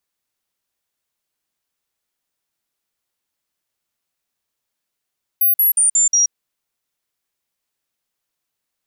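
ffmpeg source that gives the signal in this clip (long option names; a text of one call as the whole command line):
ffmpeg -f lavfi -i "aevalsrc='0.282*clip(min(mod(t,0.18),0.13-mod(t,0.18))/0.005,0,1)*sin(2*PI*14400*pow(2,-floor(t/0.18)/3)*mod(t,0.18))':duration=0.9:sample_rate=44100" out.wav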